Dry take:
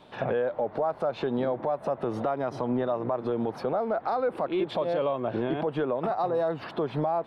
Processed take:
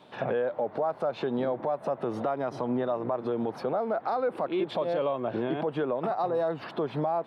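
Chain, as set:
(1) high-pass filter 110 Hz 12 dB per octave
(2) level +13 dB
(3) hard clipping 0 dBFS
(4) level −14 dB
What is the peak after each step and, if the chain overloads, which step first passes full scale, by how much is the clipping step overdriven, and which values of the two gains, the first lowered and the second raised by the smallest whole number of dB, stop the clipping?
−17.0, −4.0, −4.0, −18.0 dBFS
no step passes full scale

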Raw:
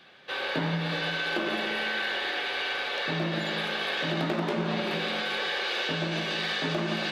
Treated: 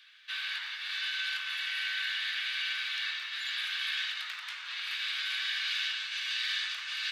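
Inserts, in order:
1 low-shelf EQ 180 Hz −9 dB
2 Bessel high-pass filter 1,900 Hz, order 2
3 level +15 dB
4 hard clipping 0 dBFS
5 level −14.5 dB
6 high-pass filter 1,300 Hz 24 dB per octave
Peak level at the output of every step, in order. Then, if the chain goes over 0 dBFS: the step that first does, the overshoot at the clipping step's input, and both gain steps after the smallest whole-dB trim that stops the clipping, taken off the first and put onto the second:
−15.5, −20.0, −5.0, −5.0, −19.5, −20.5 dBFS
no step passes full scale

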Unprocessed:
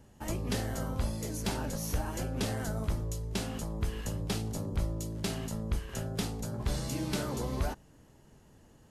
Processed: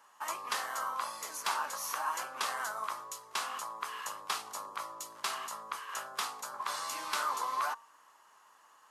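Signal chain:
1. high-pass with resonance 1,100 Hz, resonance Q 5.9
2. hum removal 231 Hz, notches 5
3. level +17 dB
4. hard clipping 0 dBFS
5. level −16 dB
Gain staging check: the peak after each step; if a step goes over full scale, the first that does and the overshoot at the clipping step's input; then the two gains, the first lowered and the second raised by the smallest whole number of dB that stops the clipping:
−19.0, −19.0, −2.0, −2.0, −18.0 dBFS
no step passes full scale

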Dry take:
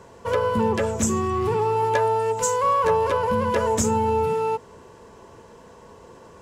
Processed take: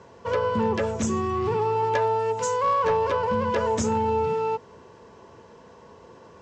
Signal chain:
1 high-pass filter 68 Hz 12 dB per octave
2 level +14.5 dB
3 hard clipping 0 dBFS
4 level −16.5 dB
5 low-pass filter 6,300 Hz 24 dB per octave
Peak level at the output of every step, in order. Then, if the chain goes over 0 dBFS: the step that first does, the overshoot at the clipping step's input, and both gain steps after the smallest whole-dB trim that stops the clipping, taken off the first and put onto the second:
−8.5, +6.0, 0.0, −16.5, −16.0 dBFS
step 2, 6.0 dB
step 2 +8.5 dB, step 4 −10.5 dB

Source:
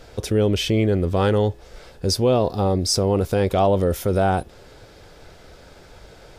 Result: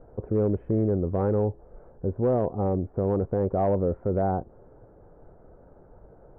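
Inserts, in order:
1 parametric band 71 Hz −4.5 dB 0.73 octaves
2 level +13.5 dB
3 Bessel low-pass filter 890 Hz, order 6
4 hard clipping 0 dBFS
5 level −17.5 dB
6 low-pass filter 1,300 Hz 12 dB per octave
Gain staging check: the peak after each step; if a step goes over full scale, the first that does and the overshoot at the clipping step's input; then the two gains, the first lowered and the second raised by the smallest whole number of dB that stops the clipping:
−7.0, +6.5, +4.0, 0.0, −17.5, −17.0 dBFS
step 2, 4.0 dB
step 2 +9.5 dB, step 5 −13.5 dB

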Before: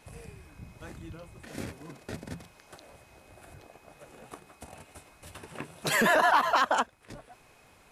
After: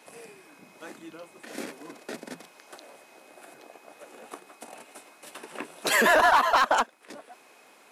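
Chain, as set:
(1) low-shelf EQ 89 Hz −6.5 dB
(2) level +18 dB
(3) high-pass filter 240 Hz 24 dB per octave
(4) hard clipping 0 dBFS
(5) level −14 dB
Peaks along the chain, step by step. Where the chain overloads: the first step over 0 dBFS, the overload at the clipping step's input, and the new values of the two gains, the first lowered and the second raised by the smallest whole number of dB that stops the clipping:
−12.0, +6.0, +6.5, 0.0, −14.0 dBFS
step 2, 6.5 dB
step 2 +11 dB, step 5 −7 dB

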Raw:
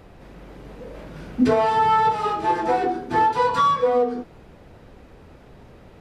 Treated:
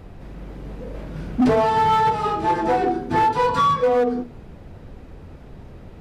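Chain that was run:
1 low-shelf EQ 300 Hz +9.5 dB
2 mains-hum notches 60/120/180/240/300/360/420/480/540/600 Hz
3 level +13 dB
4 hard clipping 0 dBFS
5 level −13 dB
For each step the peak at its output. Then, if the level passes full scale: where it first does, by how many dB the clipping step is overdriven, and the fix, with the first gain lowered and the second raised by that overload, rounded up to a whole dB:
−3.0, −3.0, +10.0, 0.0, −13.0 dBFS
step 3, 10.0 dB
step 3 +3 dB, step 5 −3 dB

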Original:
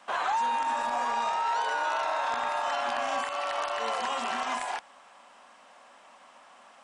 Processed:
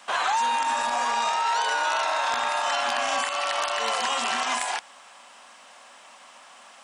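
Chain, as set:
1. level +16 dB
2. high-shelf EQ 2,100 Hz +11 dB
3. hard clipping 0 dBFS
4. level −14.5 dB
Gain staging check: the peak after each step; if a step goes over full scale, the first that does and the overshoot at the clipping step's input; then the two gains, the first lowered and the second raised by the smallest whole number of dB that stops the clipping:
−2.0, +3.5, 0.0, −14.5 dBFS
step 2, 3.5 dB
step 1 +12 dB, step 4 −10.5 dB

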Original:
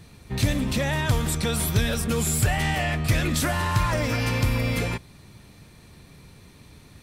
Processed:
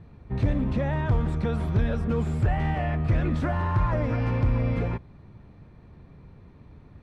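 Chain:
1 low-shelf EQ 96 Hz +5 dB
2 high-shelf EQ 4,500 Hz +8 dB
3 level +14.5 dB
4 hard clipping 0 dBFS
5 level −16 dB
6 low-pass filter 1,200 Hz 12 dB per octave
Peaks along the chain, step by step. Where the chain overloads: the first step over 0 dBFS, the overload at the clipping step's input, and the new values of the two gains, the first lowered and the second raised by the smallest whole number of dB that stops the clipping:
−9.5, −8.5, +6.0, 0.0, −16.0, −16.0 dBFS
step 3, 6.0 dB
step 3 +8.5 dB, step 5 −10 dB

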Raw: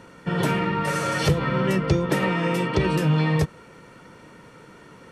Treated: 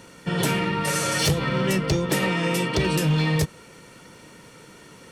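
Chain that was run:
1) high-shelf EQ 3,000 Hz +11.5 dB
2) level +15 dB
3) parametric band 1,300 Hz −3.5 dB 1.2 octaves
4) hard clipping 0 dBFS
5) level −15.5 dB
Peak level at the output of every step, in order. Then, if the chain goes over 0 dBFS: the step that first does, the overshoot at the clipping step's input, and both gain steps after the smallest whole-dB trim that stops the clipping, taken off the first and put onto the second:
−6.0, +9.0, +8.5, 0.0, −15.5 dBFS
step 2, 8.5 dB
step 2 +6 dB, step 5 −6.5 dB

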